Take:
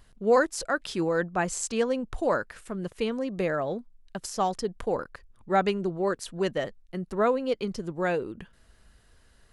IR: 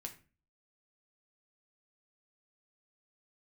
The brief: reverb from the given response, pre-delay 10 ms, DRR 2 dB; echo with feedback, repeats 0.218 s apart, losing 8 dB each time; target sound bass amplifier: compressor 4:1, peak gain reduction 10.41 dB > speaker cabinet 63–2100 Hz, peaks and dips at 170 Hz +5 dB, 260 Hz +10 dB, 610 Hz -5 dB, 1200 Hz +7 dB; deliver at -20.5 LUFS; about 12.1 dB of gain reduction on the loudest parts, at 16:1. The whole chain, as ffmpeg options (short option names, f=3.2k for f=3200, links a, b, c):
-filter_complex "[0:a]acompressor=threshold=-28dB:ratio=16,aecho=1:1:218|436|654|872|1090:0.398|0.159|0.0637|0.0255|0.0102,asplit=2[a][b];[1:a]atrim=start_sample=2205,adelay=10[c];[b][c]afir=irnorm=-1:irlink=0,volume=1.5dB[d];[a][d]amix=inputs=2:normalize=0,acompressor=threshold=-35dB:ratio=4,highpass=f=63:w=0.5412,highpass=f=63:w=1.3066,equalizer=f=170:t=q:w=4:g=5,equalizer=f=260:t=q:w=4:g=10,equalizer=f=610:t=q:w=4:g=-5,equalizer=f=1.2k:t=q:w=4:g=7,lowpass=f=2.1k:w=0.5412,lowpass=f=2.1k:w=1.3066,volume=16dB"